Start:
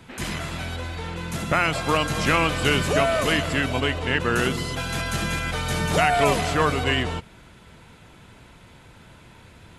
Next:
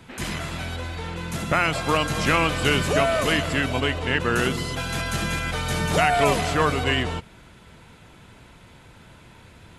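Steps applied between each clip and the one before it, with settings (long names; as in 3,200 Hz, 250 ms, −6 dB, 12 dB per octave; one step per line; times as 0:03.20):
no processing that can be heard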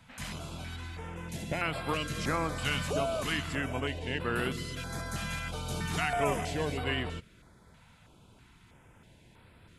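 notch on a step sequencer 3.1 Hz 370–6,300 Hz
level −9 dB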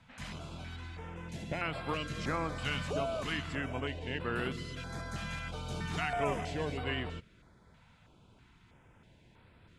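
high-frequency loss of the air 65 metres
level −3 dB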